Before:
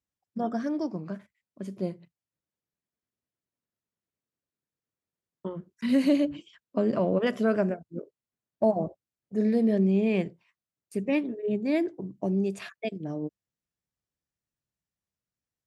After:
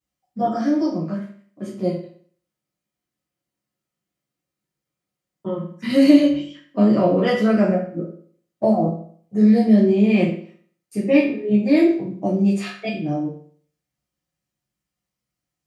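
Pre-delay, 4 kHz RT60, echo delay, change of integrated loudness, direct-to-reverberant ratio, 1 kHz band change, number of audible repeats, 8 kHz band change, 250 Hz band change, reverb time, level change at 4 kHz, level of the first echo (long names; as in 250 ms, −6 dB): 6 ms, 0.45 s, no echo audible, +9.0 dB, −10.0 dB, +9.5 dB, no echo audible, can't be measured, +10.0 dB, 0.55 s, +10.0 dB, no echo audible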